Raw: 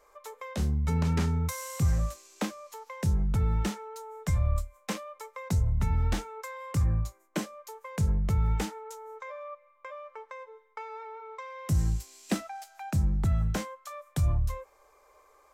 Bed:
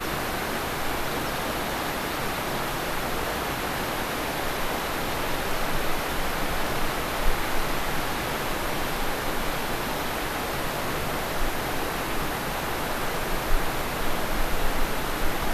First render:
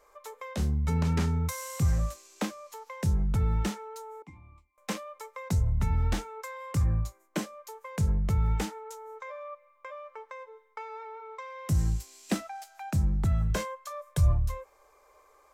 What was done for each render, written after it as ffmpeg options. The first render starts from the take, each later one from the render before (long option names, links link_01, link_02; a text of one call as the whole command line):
ffmpeg -i in.wav -filter_complex "[0:a]asettb=1/sr,asplit=3[link_01][link_02][link_03];[link_01]atrim=end=4.224[link_04];[link_02]atrim=start=4.22:end=4.78,asetpts=PTS-STARTPTS,afade=type=in:duration=0.004:curve=qsin,afade=type=out:start_time=0.556:duration=0.004:curve=qsin,asplit=3[link_05][link_06][link_07];[link_05]bandpass=frequency=300:width_type=q:width=8,volume=0dB[link_08];[link_06]bandpass=frequency=870:width_type=q:width=8,volume=-6dB[link_09];[link_07]bandpass=frequency=2240:width_type=q:width=8,volume=-9dB[link_10];[link_08][link_09][link_10]amix=inputs=3:normalize=0[link_11];[link_03]atrim=start=4.776[link_12];[link_04][link_11]acrossfade=duration=0.004:curve1=hsin:curve2=qsin[link_13];[link_13][link_12]acrossfade=duration=0.004:curve1=qsin:curve2=hsin,asettb=1/sr,asplit=3[link_14][link_15][link_16];[link_14]atrim=end=13.504[link_17];[link_15]atrim=start=13.5:end=14.33,asetpts=PTS-STARTPTS,afade=type=in:duration=0.004:curve=qsin,afade=type=out:start_time=0.826:duration=0.004:curve=qsin,aecho=1:1:1.9:0.65,atrim=end_sample=36603[link_18];[link_16]atrim=start=14.326[link_19];[link_17][link_18]acrossfade=duration=0.004:curve1=hsin:curve2=qsin[link_20];[link_20][link_19]acrossfade=duration=0.004:curve1=qsin:curve2=hsin" out.wav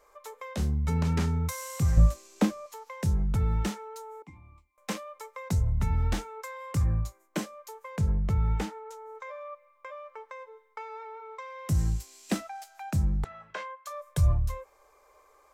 ffmpeg -i in.wav -filter_complex "[0:a]asettb=1/sr,asplit=3[link_01][link_02][link_03];[link_01]atrim=end=1.974[link_04];[link_02]atrim=start=1.97:end=2.66,asetpts=PTS-STARTPTS,afade=type=in:duration=0.004:curve=qsin,afade=type=out:start_time=0.686:duration=0.004:curve=qsin,lowshelf=frequency=480:gain=11[link_05];[link_03]atrim=start=2.656[link_06];[link_04][link_05]acrossfade=duration=0.004:curve1=hsin:curve2=qsin[link_07];[link_07][link_06]acrossfade=duration=0.004:curve1=qsin:curve2=hsin,asettb=1/sr,asplit=3[link_08][link_09][link_10];[link_08]atrim=end=7.974[link_11];[link_09]atrim=start=7.97:end=9.15,asetpts=PTS-STARTPTS,afade=type=in:duration=0.004:curve=qsin,afade=type=out:start_time=1.176:duration=0.004:curve=qsin,highshelf=frequency=4900:gain=-8.5[link_12];[link_10]atrim=start=9.146[link_13];[link_11][link_12]acrossfade=duration=0.004:curve1=hsin:curve2=qsin[link_14];[link_14][link_13]acrossfade=duration=0.004:curve1=qsin:curve2=hsin,asettb=1/sr,asplit=3[link_15][link_16][link_17];[link_15]atrim=end=13.244[link_18];[link_16]atrim=start=13.24:end=13.86,asetpts=PTS-STARTPTS,afade=type=in:duration=0.004:curve=qsin,afade=type=out:start_time=0.616:duration=0.004:curve=qsin,highpass=770,lowpass=2700[link_19];[link_17]atrim=start=13.856[link_20];[link_18][link_19]acrossfade=duration=0.004:curve1=hsin:curve2=qsin[link_21];[link_21][link_20]acrossfade=duration=0.004:curve1=qsin:curve2=hsin" out.wav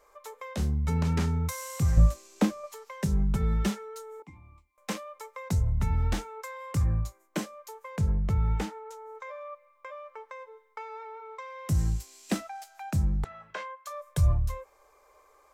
ffmpeg -i in.wav -filter_complex "[0:a]asettb=1/sr,asplit=3[link_01][link_02][link_03];[link_01]atrim=end=2.634[link_04];[link_02]atrim=start=2.63:end=4.2,asetpts=PTS-STARTPTS,afade=type=in:duration=0.004:curve=qsin,afade=type=out:start_time=1.566:duration=0.004:curve=qsin,aecho=1:1:5.1:0.7,atrim=end_sample=69237[link_05];[link_03]atrim=start=4.196[link_06];[link_04][link_05]acrossfade=duration=0.004:curve1=hsin:curve2=qsin[link_07];[link_07][link_06]acrossfade=duration=0.004:curve1=qsin:curve2=hsin" out.wav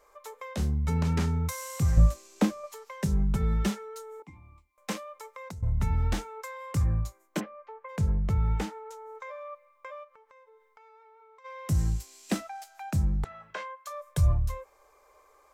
ffmpeg -i in.wav -filter_complex "[0:a]asettb=1/sr,asplit=3[link_01][link_02][link_03];[link_01]atrim=end=5.054[link_04];[link_02]atrim=start=5.05:end=5.63,asetpts=PTS-STARTPTS,afade=type=in:duration=0.004:curve=qsin,afade=type=out:start_time=0.576:duration=0.004:curve=qsin,acompressor=threshold=-38dB:ratio=10:attack=3.2:release=140:knee=1:detection=peak[link_05];[link_03]atrim=start=5.626[link_06];[link_04][link_05]acrossfade=duration=0.004:curve1=hsin:curve2=qsin[link_07];[link_07][link_06]acrossfade=duration=0.004:curve1=qsin:curve2=hsin,asplit=3[link_08][link_09][link_10];[link_08]afade=type=out:start_time=7.39:duration=0.02[link_11];[link_09]lowpass=frequency=2400:width=0.5412,lowpass=frequency=2400:width=1.3066,afade=type=in:start_time=7.39:duration=0.02,afade=type=out:start_time=7.88:duration=0.02[link_12];[link_10]afade=type=in:start_time=7.88:duration=0.02[link_13];[link_11][link_12][link_13]amix=inputs=3:normalize=0,asplit=3[link_14][link_15][link_16];[link_14]afade=type=out:start_time=10.03:duration=0.02[link_17];[link_15]acompressor=threshold=-55dB:ratio=5:attack=3.2:release=140:knee=1:detection=peak,afade=type=in:start_time=10.03:duration=0.02,afade=type=out:start_time=11.44:duration=0.02[link_18];[link_16]afade=type=in:start_time=11.44:duration=0.02[link_19];[link_17][link_18][link_19]amix=inputs=3:normalize=0" out.wav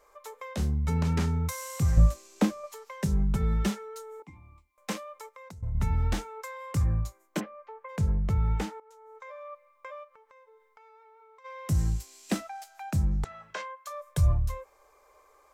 ffmpeg -i in.wav -filter_complex "[0:a]asettb=1/sr,asplit=3[link_01][link_02][link_03];[link_01]atrim=end=13.114[link_04];[link_02]atrim=start=13.11:end=13.62,asetpts=PTS-STARTPTS,afade=type=in:duration=0.004:curve=qsin,afade=type=out:start_time=0.506:duration=0.004:curve=qsin,equalizer=frequency=6300:width_type=o:width=1.3:gain=7[link_05];[link_03]atrim=start=13.616[link_06];[link_04][link_05]acrossfade=duration=0.004:curve1=hsin:curve2=qsin[link_07];[link_07][link_06]acrossfade=duration=0.004:curve1=qsin:curve2=hsin,asplit=4[link_08][link_09][link_10][link_11];[link_08]atrim=end=5.292[link_12];[link_09]atrim=start=5.288:end=5.752,asetpts=PTS-STARTPTS,volume=-5dB[link_13];[link_10]atrim=start=5.748:end=8.8,asetpts=PTS-STARTPTS,afade=type=out:start_time=3.048:duration=0.004:curve=hsin:silence=0.141254[link_14];[link_11]atrim=start=8.8,asetpts=PTS-STARTPTS,afade=type=in:duration=1.13:curve=qsin:silence=0.141254[link_15];[link_12][link_13]acrossfade=duration=0.004:curve1=hsin:curve2=hsin[link_16];[link_14][link_15]concat=n=2:v=0:a=1[link_17];[link_16][link_17]acrossfade=duration=0.004:curve1=hsin:curve2=hsin" out.wav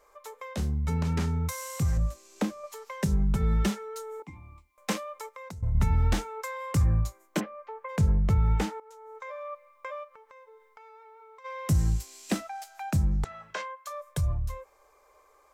ffmpeg -i in.wav -af "alimiter=limit=-20dB:level=0:latency=1:release=417,dynaudnorm=framelen=250:gausssize=21:maxgain=4.5dB" out.wav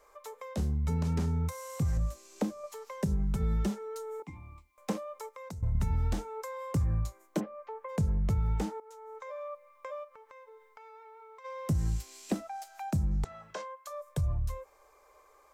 ffmpeg -i in.wav -filter_complex "[0:a]acrossover=split=980|4300[link_01][link_02][link_03];[link_01]acompressor=threshold=-26dB:ratio=4[link_04];[link_02]acompressor=threshold=-53dB:ratio=4[link_05];[link_03]acompressor=threshold=-50dB:ratio=4[link_06];[link_04][link_05][link_06]amix=inputs=3:normalize=0" out.wav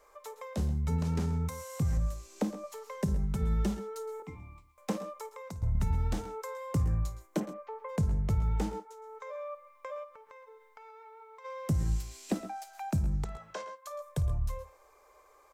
ffmpeg -i in.wav -af "aecho=1:1:53|115|131:0.119|0.141|0.15" out.wav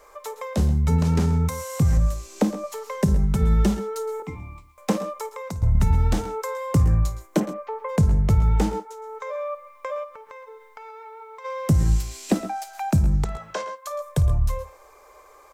ffmpeg -i in.wav -af "volume=10.5dB" out.wav